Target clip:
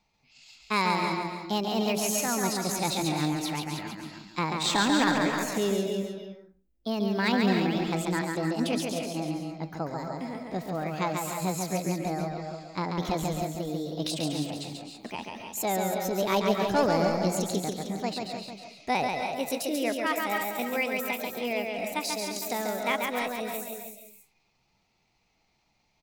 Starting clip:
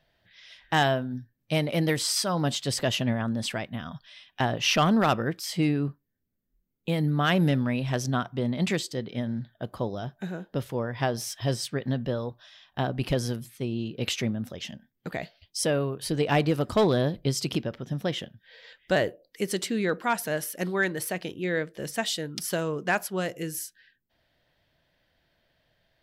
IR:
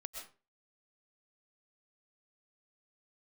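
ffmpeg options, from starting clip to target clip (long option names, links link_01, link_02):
-filter_complex "[0:a]aecho=1:1:313:0.355,asetrate=58866,aresample=44100,atempo=0.749154,asplit=2[link_01][link_02];[1:a]atrim=start_sample=2205,adelay=139[link_03];[link_02][link_03]afir=irnorm=-1:irlink=0,volume=1dB[link_04];[link_01][link_04]amix=inputs=2:normalize=0,volume=-3.5dB"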